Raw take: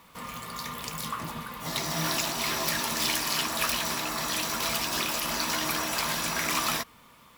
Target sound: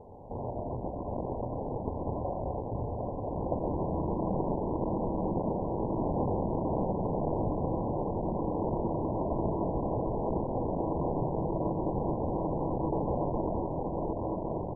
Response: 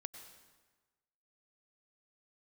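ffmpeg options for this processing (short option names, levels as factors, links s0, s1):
-filter_complex "[0:a]aresample=16000,aresample=44100,asplit=2[s0][s1];[s1]aecho=0:1:497|994|1491|1988:0.473|0.147|0.0455|0.0141[s2];[s0][s2]amix=inputs=2:normalize=0,asetrate=22050,aresample=44100,equalizer=f=4100:t=o:w=1.4:g=12,bandreject=f=75.43:t=h:w=4,bandreject=f=150.86:t=h:w=4,bandreject=f=226.29:t=h:w=4,bandreject=f=301.72:t=h:w=4,bandreject=f=377.15:t=h:w=4,bandreject=f=452.58:t=h:w=4,bandreject=f=528.01:t=h:w=4,bandreject=f=603.44:t=h:w=4,bandreject=f=678.87:t=h:w=4,bandreject=f=754.3:t=h:w=4,bandreject=f=829.73:t=h:w=4,bandreject=f=905.16:t=h:w=4,bandreject=f=980.59:t=h:w=4,bandreject=f=1056.02:t=h:w=4,bandreject=f=1131.45:t=h:w=4,bandreject=f=1206.88:t=h:w=4,bandreject=f=1282.31:t=h:w=4,bandreject=f=1357.74:t=h:w=4,bandreject=f=1433.17:t=h:w=4,bandreject=f=1508.6:t=h:w=4,bandreject=f=1584.03:t=h:w=4,bandreject=f=1659.46:t=h:w=4,bandreject=f=1734.89:t=h:w=4,asplit=2[s3][s4];[1:a]atrim=start_sample=2205,lowshelf=f=370:g=-6,adelay=117[s5];[s4][s5]afir=irnorm=-1:irlink=0,volume=1.19[s6];[s3][s6]amix=inputs=2:normalize=0,acontrast=85,lowshelf=f=76:g=4.5,aecho=1:1:718:0.282,acompressor=threshold=0.0316:ratio=2.5,acrusher=samples=34:mix=1:aa=0.000001,volume=0.708" -ar 22050 -c:a mp2 -b:a 8k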